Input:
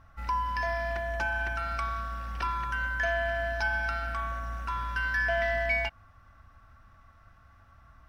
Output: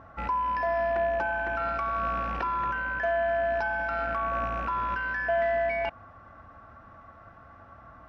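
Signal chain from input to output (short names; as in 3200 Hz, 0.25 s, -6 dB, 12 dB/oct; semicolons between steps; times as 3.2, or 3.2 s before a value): rattling part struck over -40 dBFS, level -35 dBFS; in parallel at +3 dB: negative-ratio compressor -35 dBFS, ratio -0.5; on the sum: band-pass 480 Hz, Q 0.82; gain +4.5 dB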